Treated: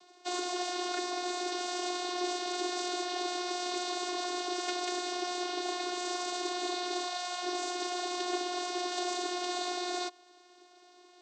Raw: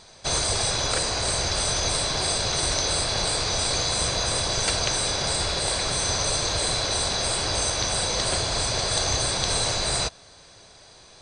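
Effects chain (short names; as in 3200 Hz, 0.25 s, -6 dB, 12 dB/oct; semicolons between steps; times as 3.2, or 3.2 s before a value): spectral gain 7.07–7.42, 320–680 Hz -25 dB; vocoder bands 16, saw 358 Hz; gain -8 dB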